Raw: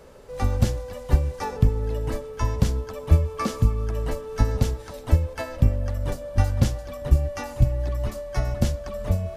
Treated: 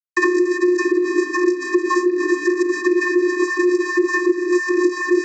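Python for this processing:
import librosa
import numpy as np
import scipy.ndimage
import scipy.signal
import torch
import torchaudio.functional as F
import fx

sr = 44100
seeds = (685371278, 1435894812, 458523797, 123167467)

y = fx.cvsd(x, sr, bps=64000)
y = fx.hum_notches(y, sr, base_hz=50, count=3)
y = fx.noise_reduce_blind(y, sr, reduce_db=7)
y = fx.stretch_vocoder(y, sr, factor=0.56)
y = fx.doubler(y, sr, ms=17.0, db=-7.0)
y = y + 10.0 ** (-19.0 / 20.0) * np.pad(y, (int(1140 * sr / 1000.0), 0))[:len(y)]
y = fx.fuzz(y, sr, gain_db=44.0, gate_db=-43.0)
y = fx.vocoder(y, sr, bands=32, carrier='square', carrier_hz=358.0)
y = fx.fixed_phaser(y, sr, hz=670.0, stages=8)
y = fx.band_squash(y, sr, depth_pct=100)
y = F.gain(torch.from_numpy(y), 3.0).numpy()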